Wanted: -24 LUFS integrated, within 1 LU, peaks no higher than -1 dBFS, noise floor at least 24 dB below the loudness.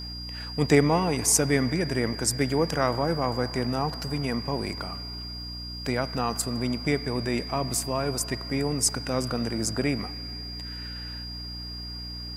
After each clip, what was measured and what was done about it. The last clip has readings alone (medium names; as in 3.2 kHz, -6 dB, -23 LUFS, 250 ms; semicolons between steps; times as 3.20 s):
hum 60 Hz; highest harmonic 300 Hz; hum level -37 dBFS; steady tone 4.8 kHz; tone level -37 dBFS; loudness -27.5 LUFS; peak level -4.5 dBFS; loudness target -24.0 LUFS
-> hum notches 60/120/180/240/300 Hz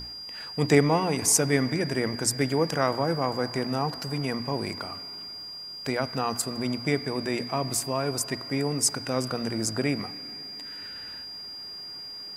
hum not found; steady tone 4.8 kHz; tone level -37 dBFS
-> band-stop 4.8 kHz, Q 30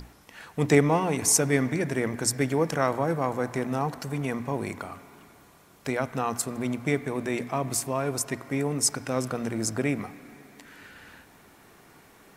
steady tone not found; loudness -27.0 LUFS; peak level -5.0 dBFS; loudness target -24.0 LUFS
-> trim +3 dB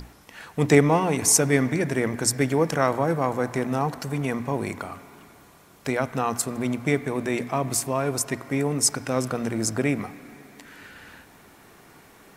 loudness -24.0 LUFS; peak level -2.0 dBFS; noise floor -52 dBFS